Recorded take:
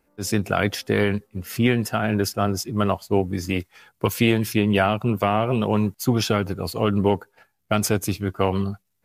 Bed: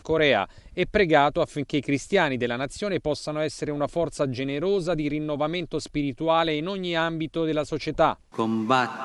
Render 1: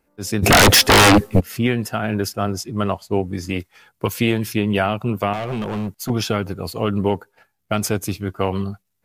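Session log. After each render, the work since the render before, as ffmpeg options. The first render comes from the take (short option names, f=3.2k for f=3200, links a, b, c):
-filter_complex "[0:a]asplit=3[a][b][c];[a]afade=t=out:st=0.42:d=0.02[d];[b]aeval=exprs='0.447*sin(PI/2*8.91*val(0)/0.447)':c=same,afade=t=in:st=0.42:d=0.02,afade=t=out:st=1.39:d=0.02[e];[c]afade=t=in:st=1.39:d=0.02[f];[d][e][f]amix=inputs=3:normalize=0,asettb=1/sr,asplit=3[g][h][i];[g]atrim=end=2.544[j];[h]atrim=start=2.54:end=3.59,asetpts=PTS-STARTPTS,afade=t=in:d=0.004:c=qsin,afade=t=out:st=1.046:d=0.004:c=qsin,lowpass=12k[k];[i]atrim=start=3.586[l];[j][k]acrossfade=d=0.004:c1=hsin:c2=qsin[m];[m][l]acrossfade=d=0.004:c1=qsin:c2=hsin,asettb=1/sr,asplit=3[n][o][p];[n]atrim=end=5.334[q];[o]atrim=start=5.33:end=6.1,asetpts=PTS-STARTPTS,afade=t=in:d=0.004:c=qsin,afade=t=out:st=0.766:d=0.004:c=qsin,asoftclip=type=hard:threshold=-21dB[r];[p]atrim=start=6.096[s];[q][r]acrossfade=d=0.004:c1=hsin:c2=qsin[t];[t][s]acrossfade=d=0.004:c1=qsin:c2=hsin"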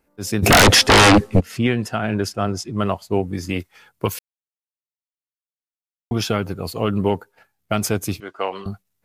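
-filter_complex "[0:a]asplit=3[a][b][c];[a]afade=t=out:st=0.62:d=0.02[d];[b]lowpass=8.8k,afade=t=in:st=0.62:d=0.02,afade=t=out:st=2.8:d=0.02[e];[c]afade=t=in:st=2.8:d=0.02[f];[d][e][f]amix=inputs=3:normalize=0,asettb=1/sr,asplit=3[g][h][i];[g]atrim=end=8.204[j];[h]atrim=start=8.2:end=8.66,asetpts=PTS-STARTPTS,afade=t=in:d=0.004:c=qsin,afade=t=out:st=0.456:d=0.004:c=qsin,highpass=510,lowpass=6.2k[k];[i]atrim=start=8.656[l];[j][k]acrossfade=d=0.004:c1=hsin:c2=qsin[m];[m][l]acrossfade=d=0.004:c1=qsin:c2=hsin,asplit=3[n][o][p];[n]atrim=end=4.19,asetpts=PTS-STARTPTS,afade=t=out:st=4.186:d=0.004:c=hsin[q];[o]atrim=start=4.19:end=6.11,asetpts=PTS-STARTPTS,volume=0[r];[p]atrim=start=6.11,asetpts=PTS-STARTPTS,afade=t=in:d=0.004:c=hsin[s];[q][r][s]concat=n=3:v=0:a=1"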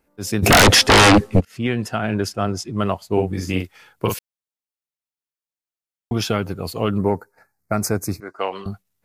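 -filter_complex "[0:a]asettb=1/sr,asplit=3[a][b][c];[a]atrim=end=3.134[d];[b]atrim=start=3.13:end=4.14,asetpts=PTS-STARTPTS,afade=t=in:d=0.004:c=qsin,afade=t=out:st=1.006:d=0.004:c=qsin,asplit=2[e][f];[f]adelay=43,volume=-4dB[g];[e][g]amix=inputs=2:normalize=0,atrim=end_sample=44541[h];[c]atrim=start=4.136[i];[d][h]acrossfade=d=0.004:c1=hsin:c2=qsin[j];[j][i]acrossfade=d=0.004:c1=qsin:c2=hsin,asettb=1/sr,asplit=3[k][l][m];[k]atrim=end=6.974[n];[l]atrim=start=6.97:end=8.39,asetpts=PTS-STARTPTS,afade=t=in:d=0.004:c=qsin,afade=t=out:st=1.416:d=0.004:c=qsin,asuperstop=centerf=3100:order=4:qfactor=1.3[o];[m]atrim=start=8.386[p];[n][o]acrossfade=d=0.004:c1=hsin:c2=qsin[q];[q][p]acrossfade=d=0.004:c1=qsin:c2=hsin,asplit=2[r][s];[r]atrim=end=1.45,asetpts=PTS-STARTPTS,afade=t=out:st=1.446:d=0.004:c=hsin:silence=0.0944061[t];[s]atrim=start=1.45,asetpts=PTS-STARTPTS,afade=t=in:d=0.47:c=qsin:silence=0.0944061[u];[t][u]concat=n=2:v=0:a=1"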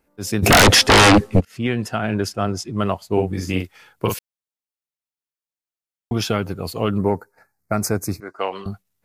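-af anull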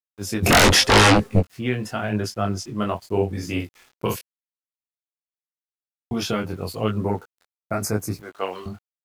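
-af "aeval=exprs='val(0)*gte(abs(val(0)),0.00668)':c=same,flanger=delay=18:depth=5.6:speed=0.86"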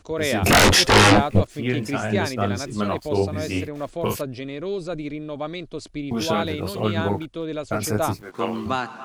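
-filter_complex "[1:a]volume=-4dB[a];[0:a][a]amix=inputs=2:normalize=0"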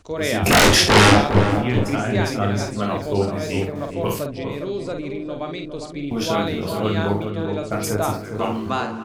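-filter_complex "[0:a]asplit=2[a][b];[b]adelay=49,volume=-6dB[c];[a][c]amix=inputs=2:normalize=0,asplit=2[d][e];[e]adelay=407,lowpass=f=1k:p=1,volume=-5.5dB,asplit=2[f][g];[g]adelay=407,lowpass=f=1k:p=1,volume=0.39,asplit=2[h][i];[i]adelay=407,lowpass=f=1k:p=1,volume=0.39,asplit=2[j][k];[k]adelay=407,lowpass=f=1k:p=1,volume=0.39,asplit=2[l][m];[m]adelay=407,lowpass=f=1k:p=1,volume=0.39[n];[d][f][h][j][l][n]amix=inputs=6:normalize=0"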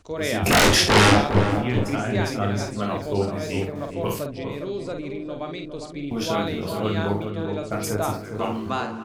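-af "volume=-3dB"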